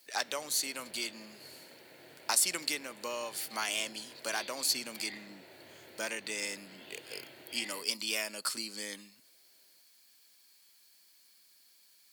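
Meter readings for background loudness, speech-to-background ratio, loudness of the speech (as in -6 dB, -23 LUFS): -51.0 LUFS, 17.0 dB, -34.0 LUFS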